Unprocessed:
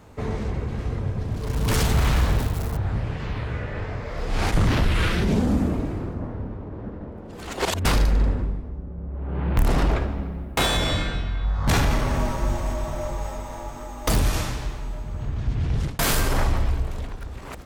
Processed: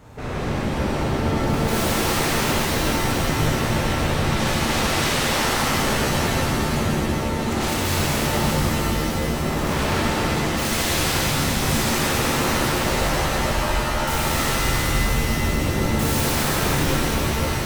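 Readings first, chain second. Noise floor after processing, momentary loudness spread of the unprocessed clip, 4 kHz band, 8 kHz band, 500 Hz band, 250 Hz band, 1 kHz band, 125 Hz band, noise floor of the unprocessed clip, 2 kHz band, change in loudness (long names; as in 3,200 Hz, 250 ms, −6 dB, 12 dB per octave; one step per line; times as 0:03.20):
−24 dBFS, 13 LU, +7.0 dB, +9.0 dB, +6.5 dB, +5.0 dB, +7.5 dB, +1.0 dB, −37 dBFS, +8.0 dB, +4.0 dB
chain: bucket-brigade delay 190 ms, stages 2,048, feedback 75%, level −15.5 dB
wave folding −27 dBFS
reverb with rising layers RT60 4 s, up +7 semitones, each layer −2 dB, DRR −7.5 dB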